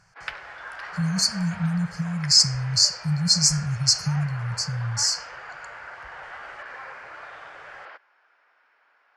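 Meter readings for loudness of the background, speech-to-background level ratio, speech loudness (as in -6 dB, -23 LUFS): -39.0 LUFS, 17.5 dB, -21.5 LUFS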